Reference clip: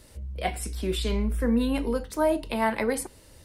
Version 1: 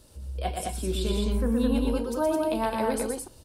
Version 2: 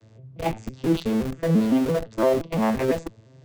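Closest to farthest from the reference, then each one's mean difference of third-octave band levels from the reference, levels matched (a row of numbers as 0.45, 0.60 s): 1, 2; 5.5, 8.5 dB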